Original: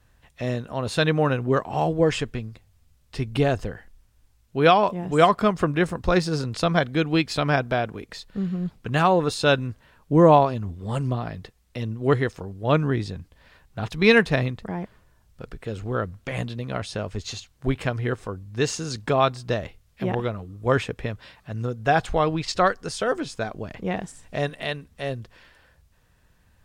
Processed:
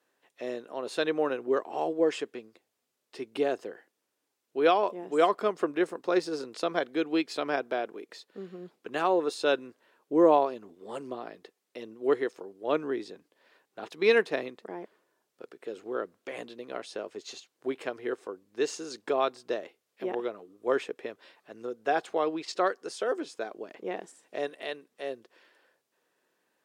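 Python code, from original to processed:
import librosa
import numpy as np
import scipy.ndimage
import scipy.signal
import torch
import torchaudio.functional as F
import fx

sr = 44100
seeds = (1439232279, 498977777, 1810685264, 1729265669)

y = fx.ladder_highpass(x, sr, hz=300.0, resonance_pct=45)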